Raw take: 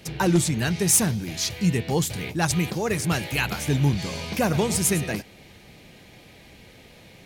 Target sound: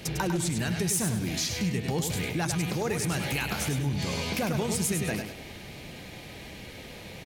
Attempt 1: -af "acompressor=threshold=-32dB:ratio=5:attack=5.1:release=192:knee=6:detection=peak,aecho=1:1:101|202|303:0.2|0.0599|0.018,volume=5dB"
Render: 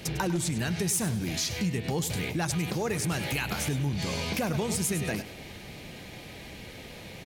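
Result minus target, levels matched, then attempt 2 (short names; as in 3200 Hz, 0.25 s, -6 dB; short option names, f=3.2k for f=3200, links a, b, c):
echo-to-direct -7 dB
-af "acompressor=threshold=-32dB:ratio=5:attack=5.1:release=192:knee=6:detection=peak,aecho=1:1:101|202|303|404:0.447|0.134|0.0402|0.0121,volume=5dB"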